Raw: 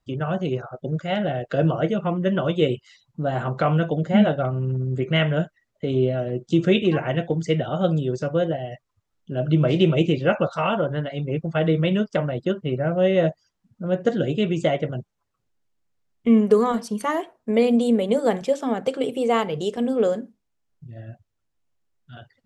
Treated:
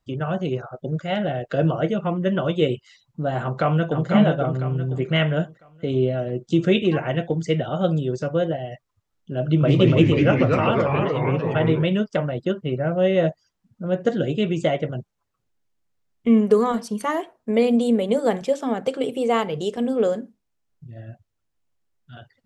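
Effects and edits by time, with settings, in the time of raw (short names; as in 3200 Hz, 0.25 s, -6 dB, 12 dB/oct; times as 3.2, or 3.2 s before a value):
3.41–4.07 echo throw 0.5 s, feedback 35%, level -4 dB
9.45–11.83 echoes that change speed 0.138 s, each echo -2 st, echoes 3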